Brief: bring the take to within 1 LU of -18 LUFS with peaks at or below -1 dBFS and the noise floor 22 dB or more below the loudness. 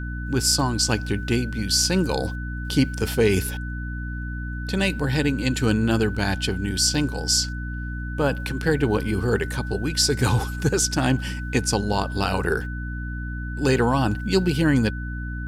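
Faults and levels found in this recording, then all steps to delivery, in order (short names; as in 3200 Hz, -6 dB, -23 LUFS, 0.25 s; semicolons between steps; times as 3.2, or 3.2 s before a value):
hum 60 Hz; harmonics up to 300 Hz; hum level -28 dBFS; steady tone 1500 Hz; tone level -36 dBFS; loudness -23.0 LUFS; peak -7.5 dBFS; loudness target -18.0 LUFS
-> de-hum 60 Hz, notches 5; notch 1500 Hz, Q 30; gain +5 dB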